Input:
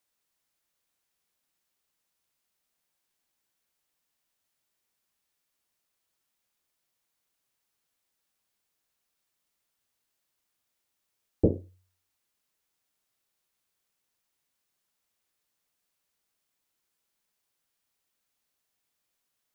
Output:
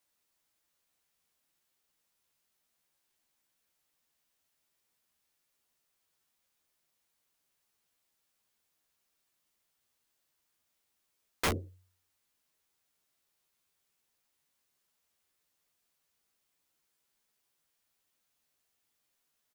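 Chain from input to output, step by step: wrapped overs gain 23.5 dB; doubler 13 ms -6 dB

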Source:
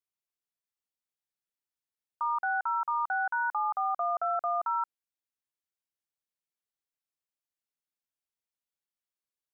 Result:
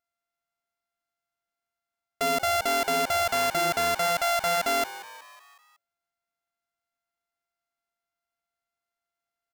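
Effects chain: sample sorter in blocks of 64 samples; frequency-shifting echo 0.185 s, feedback 55%, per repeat +110 Hz, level -16 dB; gain +4.5 dB

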